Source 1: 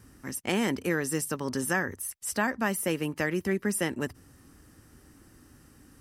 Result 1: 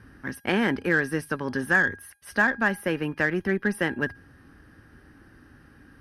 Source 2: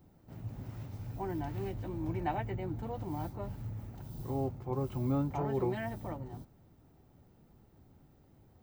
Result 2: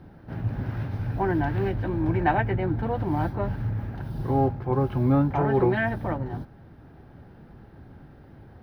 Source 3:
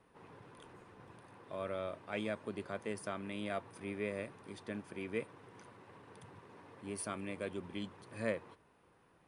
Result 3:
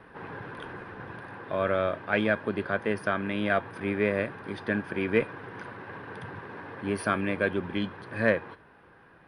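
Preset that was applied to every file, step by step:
peaking EQ 1.6 kHz +10 dB 0.33 oct; in parallel at +0.5 dB: gain riding within 5 dB 2 s; on the sum: boxcar filter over 6 samples; feedback comb 820 Hz, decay 0.39 s, mix 60%; Chebyshev shaper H 8 -34 dB, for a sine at -13 dBFS; peak normalisation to -9 dBFS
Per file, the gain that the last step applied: +3.5 dB, +12.5 dB, +13.5 dB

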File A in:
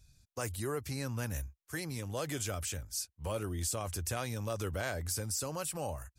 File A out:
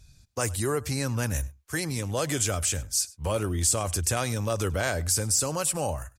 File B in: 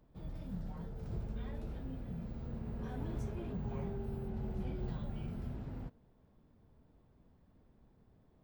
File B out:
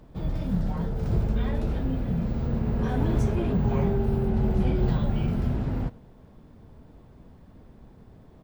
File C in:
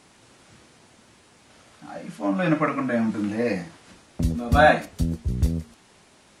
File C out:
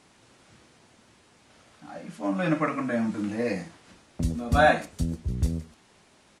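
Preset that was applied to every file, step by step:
treble shelf 12 kHz -7 dB; delay 100 ms -22 dB; dynamic bell 8.2 kHz, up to +6 dB, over -55 dBFS, Q 1.1; normalise loudness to -27 LUFS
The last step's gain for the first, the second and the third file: +8.5 dB, +16.0 dB, -3.5 dB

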